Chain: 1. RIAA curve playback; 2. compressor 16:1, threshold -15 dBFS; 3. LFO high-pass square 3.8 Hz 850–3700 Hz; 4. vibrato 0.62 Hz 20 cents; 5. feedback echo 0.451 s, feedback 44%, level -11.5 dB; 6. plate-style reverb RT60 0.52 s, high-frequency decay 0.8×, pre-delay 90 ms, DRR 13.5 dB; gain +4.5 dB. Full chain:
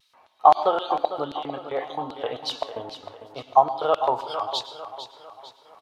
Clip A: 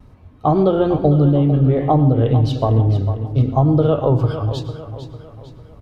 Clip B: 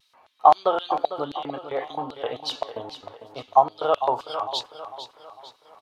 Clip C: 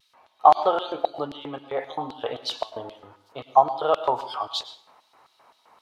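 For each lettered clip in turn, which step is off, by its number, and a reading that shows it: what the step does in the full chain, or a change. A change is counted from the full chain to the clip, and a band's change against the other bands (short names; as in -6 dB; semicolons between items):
3, 125 Hz band +32.0 dB; 6, echo-to-direct -8.5 dB to -10.5 dB; 5, echo-to-direct -8.5 dB to -13.5 dB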